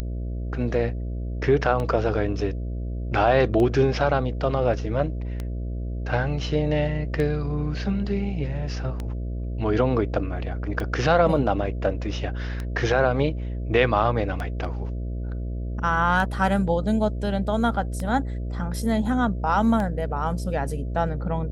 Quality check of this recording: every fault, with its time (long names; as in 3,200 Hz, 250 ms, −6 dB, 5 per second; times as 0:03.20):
mains buzz 60 Hz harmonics 11 −29 dBFS
scratch tick 33 1/3 rpm −17 dBFS